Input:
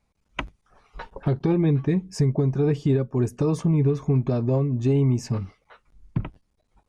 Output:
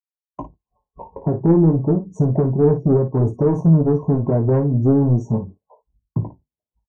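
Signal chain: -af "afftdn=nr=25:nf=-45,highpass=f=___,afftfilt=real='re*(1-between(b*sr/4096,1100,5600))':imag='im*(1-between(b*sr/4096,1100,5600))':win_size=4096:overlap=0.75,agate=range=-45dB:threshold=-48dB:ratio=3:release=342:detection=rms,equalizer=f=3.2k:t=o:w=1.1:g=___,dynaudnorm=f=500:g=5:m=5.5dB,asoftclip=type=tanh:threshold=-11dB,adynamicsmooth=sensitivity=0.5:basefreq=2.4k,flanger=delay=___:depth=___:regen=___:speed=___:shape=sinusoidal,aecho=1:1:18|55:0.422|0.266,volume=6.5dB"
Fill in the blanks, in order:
81, -2, 4.7, 7, -64, 0.36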